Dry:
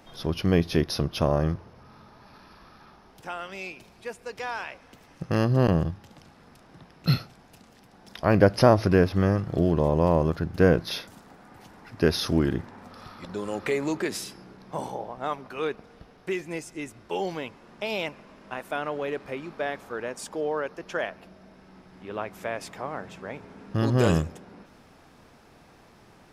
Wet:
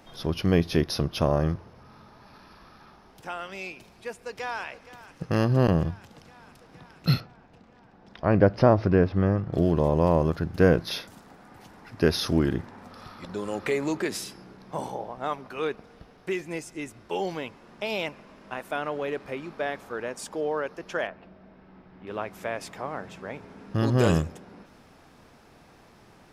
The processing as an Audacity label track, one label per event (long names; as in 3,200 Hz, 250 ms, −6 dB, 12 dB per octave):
4.130000	4.640000	delay throw 470 ms, feedback 80%, level −15.5 dB
7.200000	9.530000	head-to-tape spacing loss at 10 kHz 23 dB
21.070000	22.070000	high-frequency loss of the air 280 metres